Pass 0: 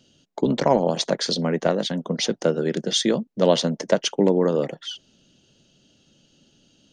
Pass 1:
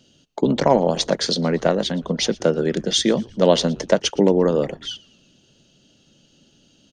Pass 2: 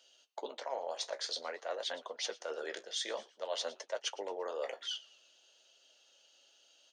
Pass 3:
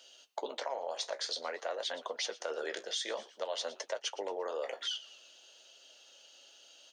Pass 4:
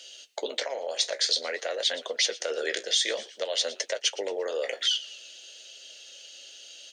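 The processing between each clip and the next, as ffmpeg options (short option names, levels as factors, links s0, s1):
-filter_complex "[0:a]asplit=4[s0][s1][s2][s3];[s1]adelay=116,afreqshift=-120,volume=0.0708[s4];[s2]adelay=232,afreqshift=-240,volume=0.0327[s5];[s3]adelay=348,afreqshift=-360,volume=0.015[s6];[s0][s4][s5][s6]amix=inputs=4:normalize=0,volume=1.33"
-af "highpass=f=580:w=0.5412,highpass=f=580:w=1.3066,areverse,acompressor=threshold=0.0316:ratio=6,areverse,flanger=delay=7.4:depth=9:regen=-47:speed=0.52:shape=sinusoidal,volume=0.841"
-af "acompressor=threshold=0.00891:ratio=6,volume=2.37"
-af "equalizer=f=500:t=o:w=1:g=5,equalizer=f=1000:t=o:w=1:g=-11,equalizer=f=2000:t=o:w=1:g=8,equalizer=f=4000:t=o:w=1:g=5,equalizer=f=8000:t=o:w=1:g=8,volume=1.68"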